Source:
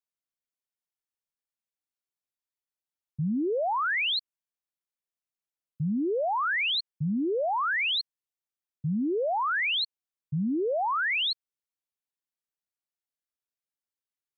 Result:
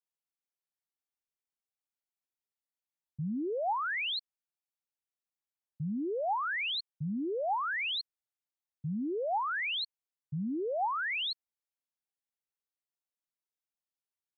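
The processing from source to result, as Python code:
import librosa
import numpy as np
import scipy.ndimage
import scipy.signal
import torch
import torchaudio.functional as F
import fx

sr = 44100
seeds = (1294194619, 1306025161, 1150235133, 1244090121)

y = fx.peak_eq(x, sr, hz=810.0, db=5.0, octaves=0.37)
y = F.gain(torch.from_numpy(y), -6.5).numpy()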